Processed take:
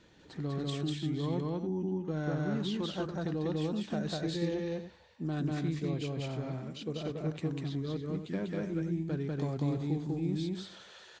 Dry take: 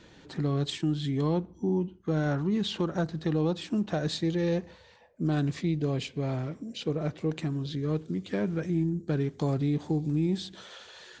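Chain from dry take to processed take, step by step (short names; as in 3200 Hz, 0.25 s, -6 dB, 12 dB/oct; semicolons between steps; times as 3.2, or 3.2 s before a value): loudspeakers at several distances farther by 67 m -1 dB, 98 m -10 dB; gain -7.5 dB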